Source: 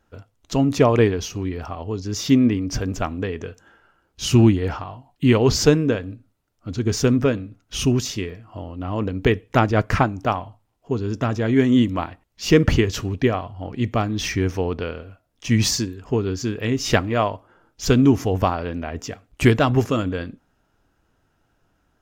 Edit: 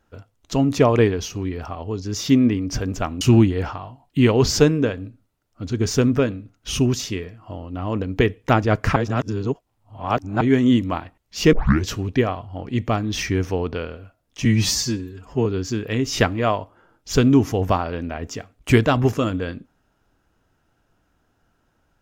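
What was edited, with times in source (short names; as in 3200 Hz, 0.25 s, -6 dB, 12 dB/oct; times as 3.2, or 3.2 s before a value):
3.21–4.27 cut
10.02–11.47 reverse
12.59 tape start 0.31 s
15.51–16.18 stretch 1.5×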